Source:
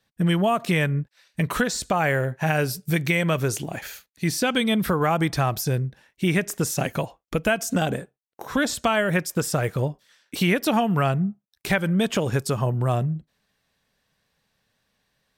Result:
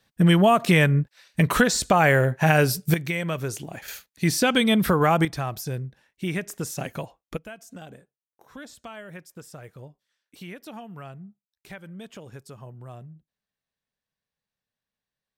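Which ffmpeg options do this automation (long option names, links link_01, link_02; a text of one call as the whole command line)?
ffmpeg -i in.wav -af "asetnsamples=nb_out_samples=441:pad=0,asendcmd='2.94 volume volume -5.5dB;3.88 volume volume 2dB;5.25 volume volume -6.5dB;7.37 volume volume -19dB',volume=4dB" out.wav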